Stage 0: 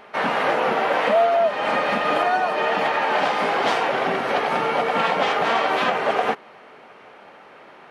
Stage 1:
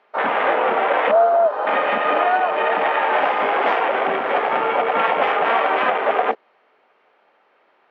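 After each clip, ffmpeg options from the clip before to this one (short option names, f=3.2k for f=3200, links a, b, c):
-filter_complex "[0:a]afwtdn=0.0562,acrossover=split=280 5500:gain=0.2 1 0.112[a][b][c];[a][b][c]amix=inputs=3:normalize=0,volume=3dB"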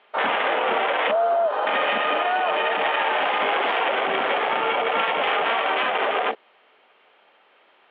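-af "alimiter=limit=-15dB:level=0:latency=1:release=56,lowpass=f=3.3k:t=q:w=3.3"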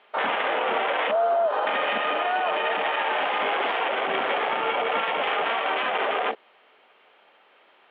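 -af "alimiter=limit=-16dB:level=0:latency=1:release=86"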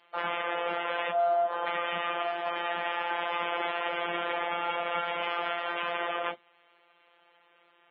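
-filter_complex "[0:a]asplit=2[a][b];[b]asoftclip=type=tanh:threshold=-24.5dB,volume=-12dB[c];[a][c]amix=inputs=2:normalize=0,afftfilt=real='hypot(re,im)*cos(PI*b)':imag='0':win_size=1024:overlap=0.75,volume=-4dB" -ar 16000 -c:a libmp3lame -b:a 16k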